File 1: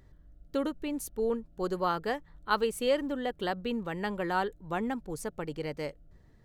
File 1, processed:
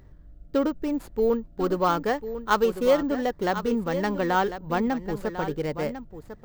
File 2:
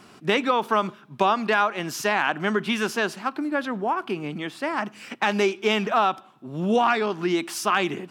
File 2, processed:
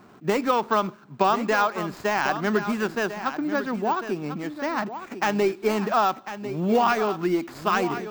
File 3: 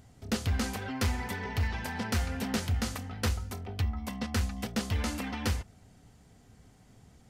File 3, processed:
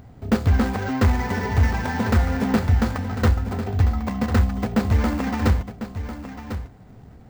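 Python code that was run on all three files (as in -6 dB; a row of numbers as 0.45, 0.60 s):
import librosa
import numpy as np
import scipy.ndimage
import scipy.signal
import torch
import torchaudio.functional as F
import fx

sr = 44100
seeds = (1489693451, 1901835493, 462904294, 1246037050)

y = scipy.signal.medfilt(x, 15)
y = y + 10.0 ** (-11.0 / 20.0) * np.pad(y, (int(1048 * sr / 1000.0), 0))[:len(y)]
y = np.repeat(scipy.signal.resample_poly(y, 1, 2), 2)[:len(y)]
y = librosa.util.normalize(y) * 10.0 ** (-9 / 20.0)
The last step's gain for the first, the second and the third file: +7.0, +0.5, +11.5 dB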